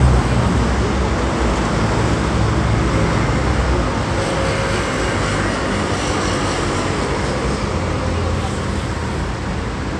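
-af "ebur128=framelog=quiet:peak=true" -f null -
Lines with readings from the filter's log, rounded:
Integrated loudness:
  I:         -18.5 LUFS
  Threshold: -28.5 LUFS
Loudness range:
  LRA:         2.7 LU
  Threshold: -38.5 LUFS
  LRA low:   -20.1 LUFS
  LRA high:  -17.4 LUFS
True peak:
  Peak:       -2.1 dBFS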